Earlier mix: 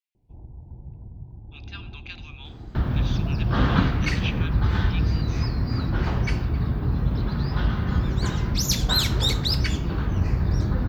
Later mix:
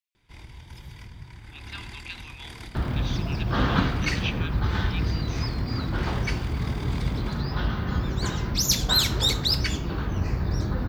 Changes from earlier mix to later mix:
first sound: remove Chebyshev low-pass filter 770 Hz, order 4
master: add bass and treble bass −4 dB, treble +3 dB

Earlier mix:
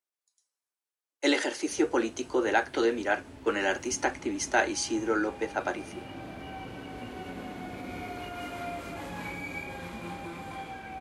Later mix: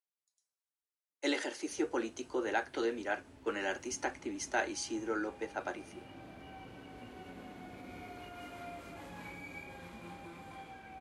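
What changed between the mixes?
speech −8.0 dB
background −9.5 dB

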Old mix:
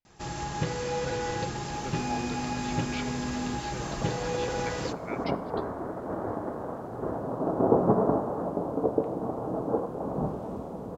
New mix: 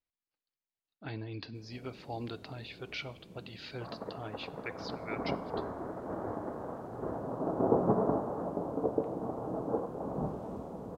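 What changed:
first sound: muted
second sound −5.0 dB

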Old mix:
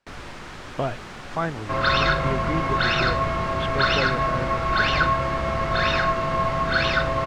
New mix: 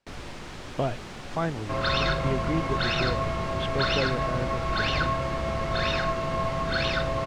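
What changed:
second sound: send −6.5 dB
master: add parametric band 1,400 Hz −5.5 dB 1.4 octaves

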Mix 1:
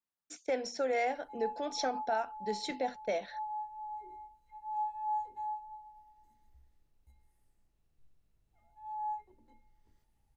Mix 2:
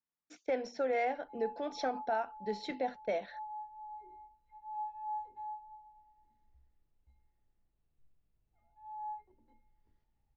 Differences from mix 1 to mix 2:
background −4.0 dB
master: add high-frequency loss of the air 180 metres

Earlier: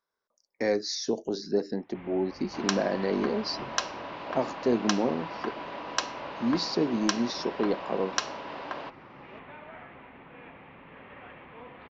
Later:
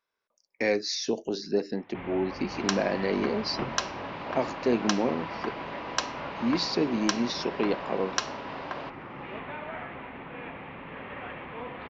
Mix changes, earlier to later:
speech: add parametric band 2,600 Hz +13 dB 0.6 octaves
first sound +8.0 dB

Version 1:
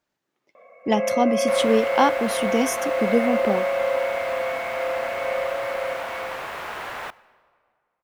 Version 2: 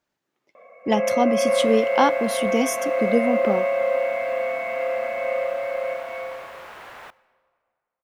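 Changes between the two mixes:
first sound: send +7.5 dB
second sound −8.5 dB

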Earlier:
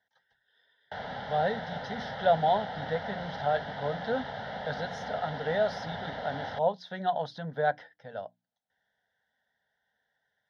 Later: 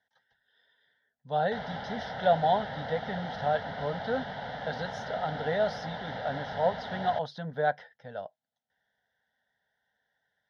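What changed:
background: entry +0.60 s
master: remove mains-hum notches 60/120/180/240/300 Hz

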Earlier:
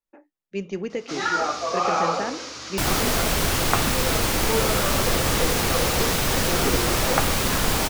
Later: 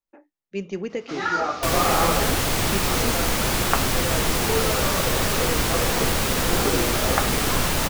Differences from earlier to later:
first sound: add bass and treble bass +3 dB, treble −10 dB
second sound: entry −1.15 s

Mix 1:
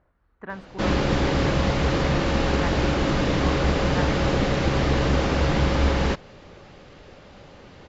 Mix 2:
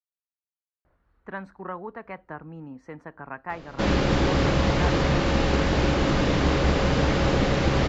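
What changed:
speech: entry +0.85 s
background: entry +3.00 s

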